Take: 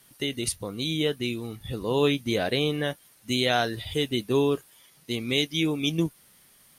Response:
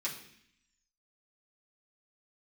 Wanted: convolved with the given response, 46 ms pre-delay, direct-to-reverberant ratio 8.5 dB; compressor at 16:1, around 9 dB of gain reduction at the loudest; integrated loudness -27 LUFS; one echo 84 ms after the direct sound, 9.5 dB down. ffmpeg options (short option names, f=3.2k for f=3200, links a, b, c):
-filter_complex "[0:a]acompressor=threshold=-27dB:ratio=16,aecho=1:1:84:0.335,asplit=2[a][b];[1:a]atrim=start_sample=2205,adelay=46[c];[b][c]afir=irnorm=-1:irlink=0,volume=-11.5dB[d];[a][d]amix=inputs=2:normalize=0,volume=5dB"